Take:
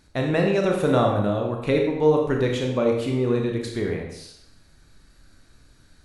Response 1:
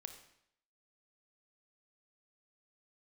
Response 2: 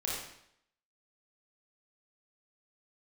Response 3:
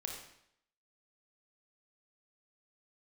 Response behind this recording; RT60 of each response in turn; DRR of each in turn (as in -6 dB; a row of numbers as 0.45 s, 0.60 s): 3; 0.70 s, 0.70 s, 0.70 s; 6.5 dB, -5.5 dB, 0.5 dB